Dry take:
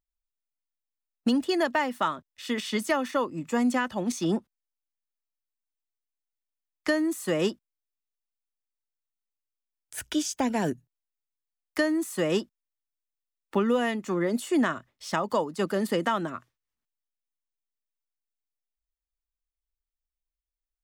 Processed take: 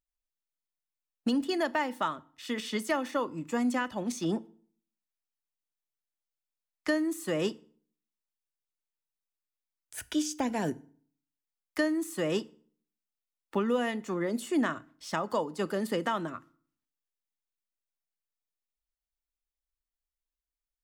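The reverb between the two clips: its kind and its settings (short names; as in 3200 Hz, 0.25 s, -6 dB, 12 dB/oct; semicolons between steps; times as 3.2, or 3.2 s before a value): FDN reverb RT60 0.51 s, low-frequency decay 1.25×, high-frequency decay 0.8×, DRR 16.5 dB; gain -4 dB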